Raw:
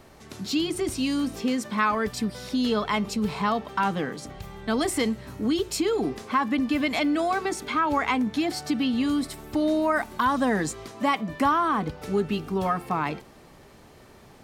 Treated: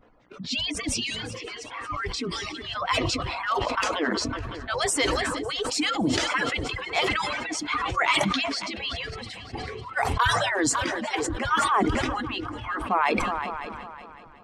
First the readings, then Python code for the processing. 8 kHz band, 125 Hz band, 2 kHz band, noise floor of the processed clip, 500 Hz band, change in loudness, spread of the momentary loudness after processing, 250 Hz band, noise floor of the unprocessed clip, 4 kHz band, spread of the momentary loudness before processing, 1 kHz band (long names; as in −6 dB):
+5.5 dB, +1.0 dB, +4.0 dB, −44 dBFS, −2.0 dB, −0.5 dB, 13 LU, −6.0 dB, −51 dBFS, +6.0 dB, 5 LU, 0.0 dB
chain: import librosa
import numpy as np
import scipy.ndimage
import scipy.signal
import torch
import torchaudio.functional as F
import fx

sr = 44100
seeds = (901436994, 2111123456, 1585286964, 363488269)

y = fx.hpss_only(x, sr, part='percussive')
y = fx.dmg_buzz(y, sr, base_hz=60.0, harmonics=23, level_db=-64.0, tilt_db=-1, odd_only=False)
y = fx.env_lowpass(y, sr, base_hz=2100.0, full_db=-25.0)
y = fx.transient(y, sr, attack_db=-4, sustain_db=0)
y = scipy.signal.sosfilt(scipy.signal.butter(2, 8300.0, 'lowpass', fs=sr, output='sos'), y)
y = fx.noise_reduce_blind(y, sr, reduce_db=13)
y = fx.echo_heads(y, sr, ms=185, heads='second and third', feedback_pct=47, wet_db=-21.5)
y = fx.sustainer(y, sr, db_per_s=22.0)
y = F.gain(torch.from_numpy(y), 6.0).numpy()